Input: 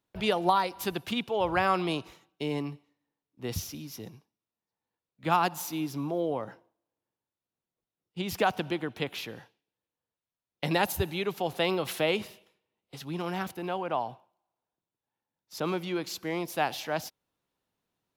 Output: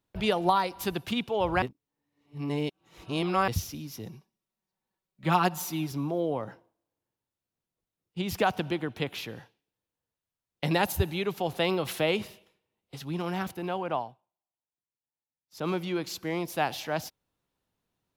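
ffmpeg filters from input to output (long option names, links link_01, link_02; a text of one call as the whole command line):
ffmpeg -i in.wav -filter_complex "[0:a]asettb=1/sr,asplit=3[link_01][link_02][link_03];[link_01]atrim=end=4.094[link_04];[link_02]atrim=start=4.09:end=5.92,asetpts=PTS-STARTPTS,afade=type=in:duration=0.004:curve=qsin,afade=type=out:start_time=1.826:duration=0.004:curve=qsin,aecho=1:1:5.3:0.65,atrim=end_sample=80703[link_05];[link_03]atrim=start=5.916[link_06];[link_04][link_05]acrossfade=duration=0.004:curve1=hsin:curve2=qsin[link_07];[link_07][link_06]acrossfade=duration=0.004:curve1=qsin:curve2=hsin,asplit=5[link_08][link_09][link_10][link_11][link_12];[link_08]atrim=end=1.622[link_13];[link_09]atrim=start=1.618:end=3.482,asetpts=PTS-STARTPTS,areverse[link_14];[link_10]atrim=start=3.478:end=14.14,asetpts=PTS-STARTPTS,afade=type=out:start_time=10.472:duration=0.19:silence=0.16788[link_15];[link_11]atrim=start=14.14:end=15.5,asetpts=PTS-STARTPTS,volume=-15.5dB[link_16];[link_12]atrim=start=15.5,asetpts=PTS-STARTPTS,afade=type=in:duration=0.19:silence=0.16788[link_17];[link_13][link_14]acrossfade=duration=0.004:curve1=hsin:curve2=hsin[link_18];[link_15][link_16][link_17]concat=n=3:v=0:a=1[link_19];[link_18][link_19]acrossfade=duration=0.004:curve1=hsin:curve2=hsin,lowshelf=frequency=120:gain=8.5" out.wav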